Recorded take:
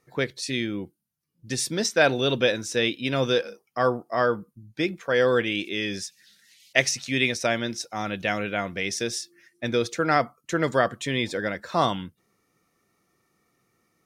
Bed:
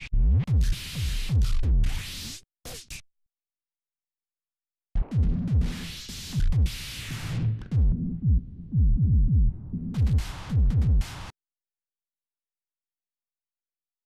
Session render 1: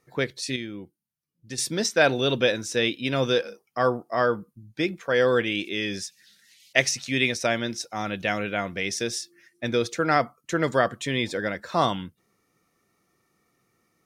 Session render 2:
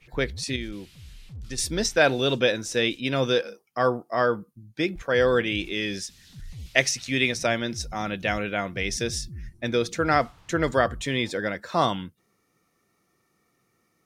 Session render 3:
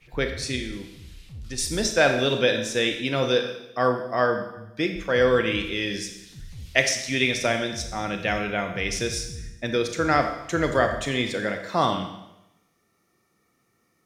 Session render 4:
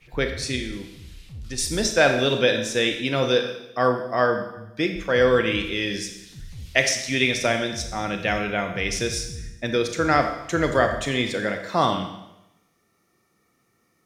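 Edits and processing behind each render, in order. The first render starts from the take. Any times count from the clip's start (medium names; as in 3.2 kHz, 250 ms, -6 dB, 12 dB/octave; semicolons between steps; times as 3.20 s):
0.56–1.58 s: gain -6.5 dB
add bed -17 dB
Schroeder reverb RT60 0.91 s, combs from 28 ms, DRR 5.5 dB
trim +1.5 dB; peak limiter -3 dBFS, peak gain reduction 1.5 dB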